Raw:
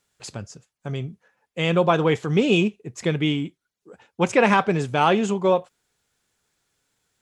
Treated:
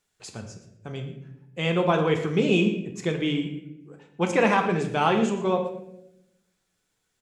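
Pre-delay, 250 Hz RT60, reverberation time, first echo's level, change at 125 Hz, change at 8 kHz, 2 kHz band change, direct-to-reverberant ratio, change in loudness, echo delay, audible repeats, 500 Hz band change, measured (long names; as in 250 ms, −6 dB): 3 ms, 1.3 s, 0.85 s, −15.5 dB, −3.0 dB, −3.5 dB, −3.0 dB, 3.5 dB, −2.5 dB, 117 ms, 1, −3.0 dB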